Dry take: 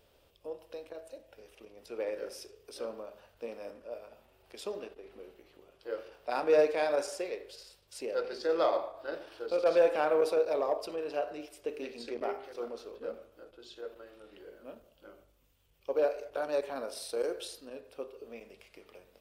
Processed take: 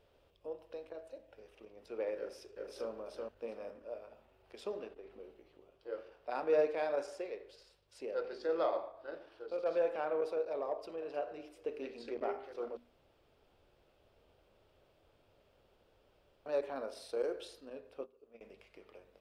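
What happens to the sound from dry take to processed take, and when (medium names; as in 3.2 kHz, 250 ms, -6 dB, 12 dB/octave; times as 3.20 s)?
2.18–2.90 s: echo throw 380 ms, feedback 20%, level -2.5 dB
5.15–5.92 s: peaking EQ 1.6 kHz -3.5 dB 1.2 oct
10.70–11.11 s: echo throw 310 ms, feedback 40%, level -16.5 dB
12.77–16.46 s: room tone
18.01–18.41 s: gate -43 dBFS, range -15 dB
whole clip: low-pass 2.4 kHz 6 dB/octave; hum notches 60/120/180/240/300 Hz; gain riding within 4 dB 2 s; trim -6 dB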